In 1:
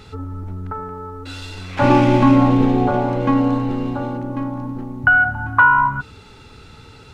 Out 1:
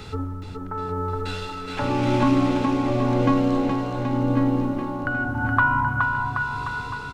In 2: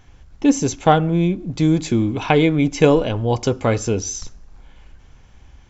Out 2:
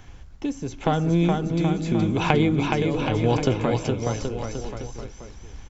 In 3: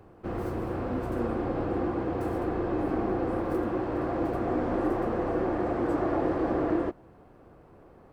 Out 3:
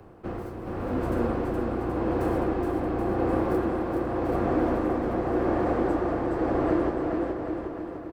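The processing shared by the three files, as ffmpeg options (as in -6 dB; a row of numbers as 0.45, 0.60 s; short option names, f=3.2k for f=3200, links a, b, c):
-filter_complex "[0:a]acrossover=split=170|3700[a][b][c];[a]acompressor=threshold=-30dB:ratio=4[d];[b]acompressor=threshold=-24dB:ratio=4[e];[c]acompressor=threshold=-45dB:ratio=4[f];[d][e][f]amix=inputs=3:normalize=0,tremolo=f=0.89:d=0.66,aecho=1:1:420|777|1080|1338|1558:0.631|0.398|0.251|0.158|0.1,volume=4dB"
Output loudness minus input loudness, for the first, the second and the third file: -7.0, -5.5, +2.0 LU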